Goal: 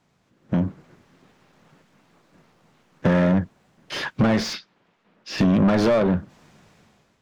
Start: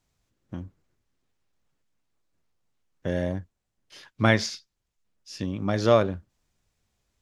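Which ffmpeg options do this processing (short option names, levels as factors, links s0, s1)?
-filter_complex "[0:a]acrossover=split=920[s0][s1];[s1]alimiter=limit=0.0841:level=0:latency=1:release=36[s2];[s0][s2]amix=inputs=2:normalize=0,asettb=1/sr,asplit=3[s3][s4][s5];[s3]atrim=end=4.534[s6];[s4]atrim=start=4.53:end=5.38,asetpts=PTS-STARTPTS,afade=t=in:d=0.004:c=qsin,afade=t=out:st=0.846:d=0.004:c=qsin,acrossover=split=170 4000:gain=0.224 1 0.158[s7][s8][s9];[s7][s8][s9]amix=inputs=3:normalize=0[s10];[s5]atrim=start=5.376[s11];[s6][s10]acrossfade=d=0.004:c1=hsin:c2=qsin[s12];[s12][s11]acrossfade=d=0.004:c1=qsin:c2=hsin,acompressor=threshold=0.0282:ratio=8,equalizer=f=170:t=o:w=1.3:g=11,dynaudnorm=f=250:g=5:m=5.01,asplit=2[s13][s14];[s14]highpass=f=720:p=1,volume=25.1,asoftclip=type=tanh:threshold=0.562[s15];[s13][s15]amix=inputs=2:normalize=0,lowpass=f=1200:p=1,volume=0.501,volume=0.562"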